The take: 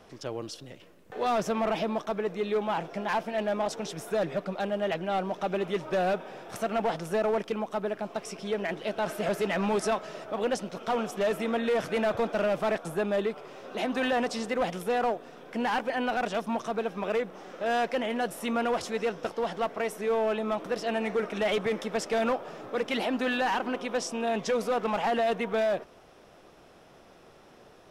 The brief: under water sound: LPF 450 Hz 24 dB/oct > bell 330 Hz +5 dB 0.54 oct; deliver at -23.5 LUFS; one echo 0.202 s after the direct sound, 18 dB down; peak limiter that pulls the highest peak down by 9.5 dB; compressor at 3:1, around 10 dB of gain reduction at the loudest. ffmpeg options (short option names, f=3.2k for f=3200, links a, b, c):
-af "acompressor=threshold=-38dB:ratio=3,alimiter=level_in=11dB:limit=-24dB:level=0:latency=1,volume=-11dB,lowpass=f=450:w=0.5412,lowpass=f=450:w=1.3066,equalizer=f=330:t=o:w=0.54:g=5,aecho=1:1:202:0.126,volume=22dB"